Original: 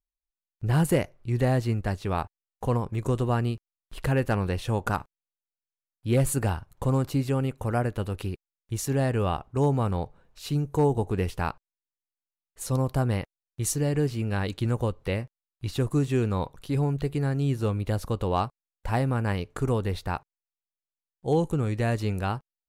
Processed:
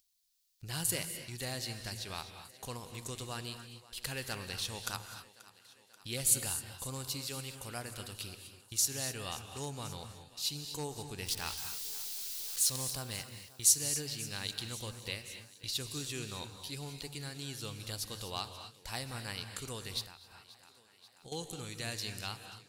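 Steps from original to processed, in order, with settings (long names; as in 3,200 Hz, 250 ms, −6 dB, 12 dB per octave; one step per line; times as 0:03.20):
0:11.26–0:12.91: converter with a step at zero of −34 dBFS
first-order pre-emphasis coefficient 0.9
downward expander −52 dBFS
parametric band 4,400 Hz +11.5 dB 1.4 octaves
upward compression, threshold −42 dBFS
feedback echo with a high-pass in the loop 534 ms, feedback 65%, high-pass 160 Hz, level −19 dB
convolution reverb, pre-delay 3 ms, DRR 8 dB
0:20.03–0:21.32: downward compressor 16 to 1, threshold −49 dBFS, peak gain reduction 13.5 dB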